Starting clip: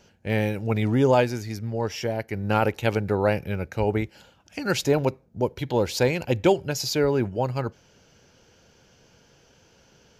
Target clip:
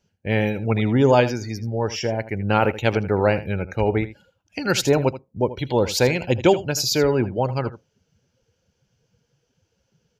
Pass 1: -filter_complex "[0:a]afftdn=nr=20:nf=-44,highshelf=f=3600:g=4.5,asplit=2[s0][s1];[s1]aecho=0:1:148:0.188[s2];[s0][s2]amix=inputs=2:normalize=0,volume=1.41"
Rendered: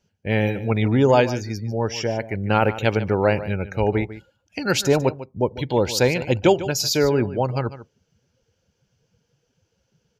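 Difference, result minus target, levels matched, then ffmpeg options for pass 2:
echo 68 ms late
-filter_complex "[0:a]afftdn=nr=20:nf=-44,highshelf=f=3600:g=4.5,asplit=2[s0][s1];[s1]aecho=0:1:80:0.188[s2];[s0][s2]amix=inputs=2:normalize=0,volume=1.41"

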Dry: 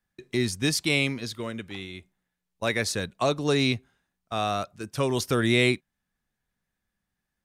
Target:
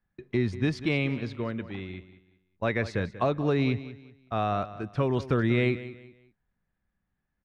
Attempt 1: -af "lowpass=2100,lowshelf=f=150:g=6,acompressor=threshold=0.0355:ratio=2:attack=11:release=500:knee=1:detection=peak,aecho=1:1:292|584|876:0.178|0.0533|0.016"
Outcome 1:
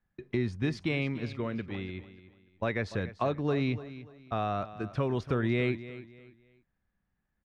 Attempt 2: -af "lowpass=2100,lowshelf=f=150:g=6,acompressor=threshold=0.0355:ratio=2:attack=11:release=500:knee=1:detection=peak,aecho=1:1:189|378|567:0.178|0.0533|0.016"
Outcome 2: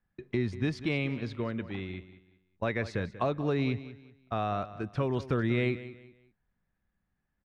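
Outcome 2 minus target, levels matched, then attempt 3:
compression: peak gain reduction +3.5 dB
-af "lowpass=2100,lowshelf=f=150:g=6,acompressor=threshold=0.0841:ratio=2:attack=11:release=500:knee=1:detection=peak,aecho=1:1:189|378|567:0.178|0.0533|0.016"

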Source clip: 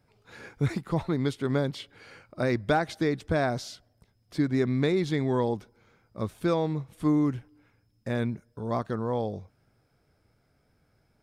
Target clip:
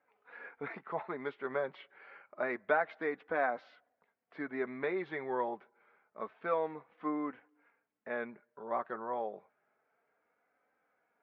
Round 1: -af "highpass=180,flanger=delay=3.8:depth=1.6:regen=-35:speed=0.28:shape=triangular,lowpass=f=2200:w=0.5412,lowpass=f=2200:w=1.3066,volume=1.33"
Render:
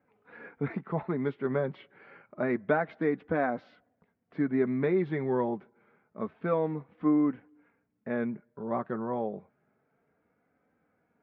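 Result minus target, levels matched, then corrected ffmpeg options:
250 Hz band +6.5 dB
-af "highpass=620,flanger=delay=3.8:depth=1.6:regen=-35:speed=0.28:shape=triangular,lowpass=f=2200:w=0.5412,lowpass=f=2200:w=1.3066,volume=1.33"

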